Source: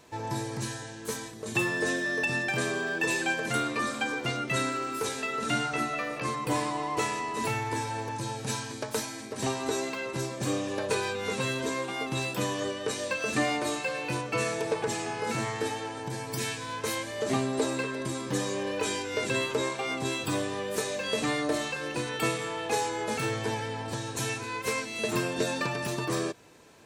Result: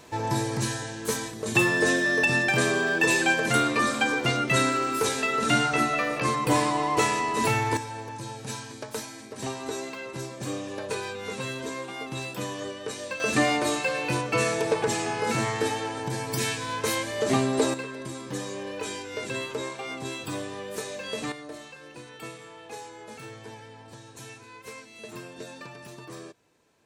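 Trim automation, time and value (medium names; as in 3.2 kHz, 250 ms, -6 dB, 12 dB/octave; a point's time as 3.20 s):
+6 dB
from 7.77 s -3 dB
from 13.20 s +4.5 dB
from 17.74 s -3.5 dB
from 21.32 s -12 dB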